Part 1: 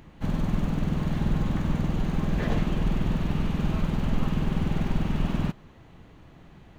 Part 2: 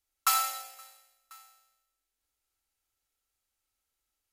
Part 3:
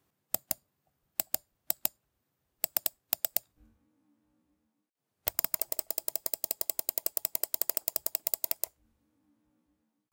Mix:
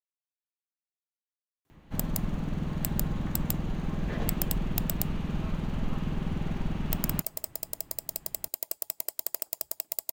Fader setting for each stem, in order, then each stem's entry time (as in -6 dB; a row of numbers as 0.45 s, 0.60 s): -5.5 dB, mute, -2.5 dB; 1.70 s, mute, 1.65 s